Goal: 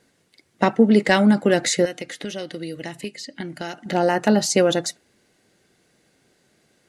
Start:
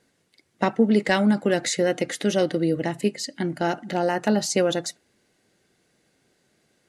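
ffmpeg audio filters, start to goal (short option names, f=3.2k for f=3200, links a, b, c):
-filter_complex "[0:a]asettb=1/sr,asplit=3[a][b][c];[a]atrim=end=1.854[d];[b]atrim=start=1.85:end=3.86,asetpts=PTS-STARTPTS,afade=t=in:d=0.004:c=qsin,afade=t=out:st=2.006:d=0.004:c=qsin,acrossover=split=1900|4500[e][f][g];[e]acompressor=threshold=-35dB:ratio=4[h];[f]acompressor=threshold=-41dB:ratio=4[i];[g]acompressor=threshold=-49dB:ratio=4[j];[h][i][j]amix=inputs=3:normalize=0[k];[c]atrim=start=3.856[l];[d][k]acrossfade=d=0.004:c1=hsin:c2=qsin[m];[m][l]acrossfade=d=0.004:c1=qsin:c2=hsin,volume=4dB"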